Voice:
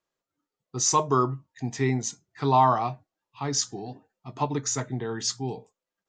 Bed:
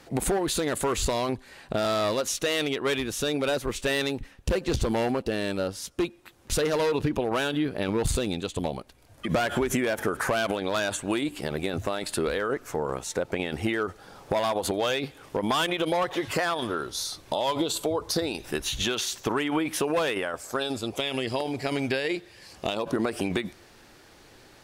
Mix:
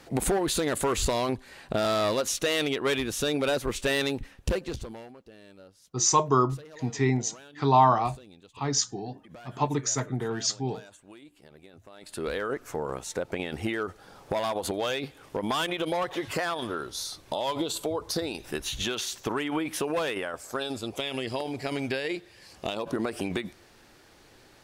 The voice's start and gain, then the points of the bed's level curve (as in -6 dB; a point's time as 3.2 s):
5.20 s, +0.5 dB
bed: 4.47 s 0 dB
5.14 s -22.5 dB
11.87 s -22.5 dB
12.29 s -3 dB